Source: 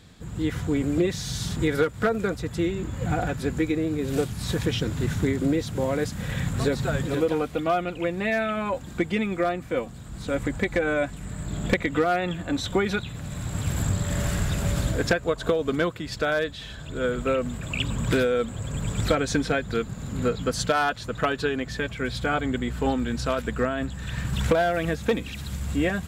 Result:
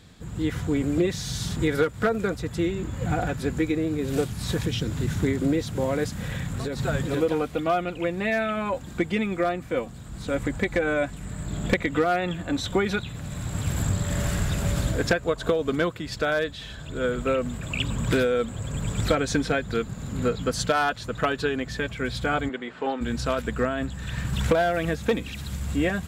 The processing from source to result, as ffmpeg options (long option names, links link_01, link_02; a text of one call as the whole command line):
ffmpeg -i in.wav -filter_complex "[0:a]asettb=1/sr,asplit=3[link_01][link_02][link_03];[link_01]atrim=end=4.614[link_04];[link_02]atrim=start=4.61:end=5.16,asetpts=PTS-STARTPTS,afade=type=in:duration=0.004:curve=qsin,afade=type=out:start_time=0.546:duration=0.004:curve=qsin,acrossover=split=320|3000[link_05][link_06][link_07];[link_06]acompressor=threshold=-36dB:ratio=2.5:attack=3.2:release=140:knee=2.83:detection=peak[link_08];[link_05][link_08][link_07]amix=inputs=3:normalize=0[link_09];[link_03]atrim=start=5.156[link_10];[link_04][link_09]acrossfade=duration=0.004:curve1=hsin:curve2=qsin[link_11];[link_11][link_10]acrossfade=duration=0.004:curve1=qsin:curve2=hsin,asettb=1/sr,asplit=3[link_12][link_13][link_14];[link_12]atrim=end=6.114[link_15];[link_13]atrim=start=6.11:end=6.8,asetpts=PTS-STARTPTS,afade=type=in:duration=0.004:curve=qsin,afade=type=out:start_time=0.686:duration=0.004:curve=qsin,acompressor=threshold=-26dB:ratio=5:attack=3.2:release=140:knee=1:detection=peak[link_16];[link_14]atrim=start=6.796[link_17];[link_15][link_16]acrossfade=duration=0.004:curve1=hsin:curve2=qsin[link_18];[link_18][link_17]acrossfade=duration=0.004:curve1=qsin:curve2=hsin,asplit=3[link_19][link_20][link_21];[link_19]afade=type=out:start_time=22.48:duration=0.02[link_22];[link_20]highpass=380,lowpass=3300,afade=type=in:start_time=22.48:duration=0.02,afade=type=out:start_time=23:duration=0.02[link_23];[link_21]afade=type=in:start_time=23:duration=0.02[link_24];[link_22][link_23][link_24]amix=inputs=3:normalize=0" out.wav